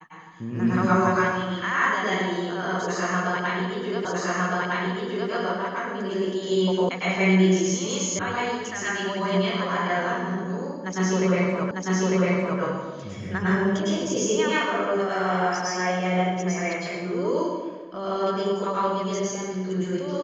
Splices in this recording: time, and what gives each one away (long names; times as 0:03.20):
0:04.05: the same again, the last 1.26 s
0:06.89: cut off before it has died away
0:08.19: cut off before it has died away
0:11.71: the same again, the last 0.9 s